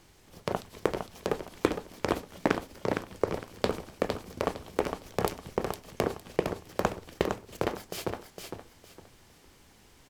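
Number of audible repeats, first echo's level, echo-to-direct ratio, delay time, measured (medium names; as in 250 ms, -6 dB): 3, -5.5 dB, -5.0 dB, 459 ms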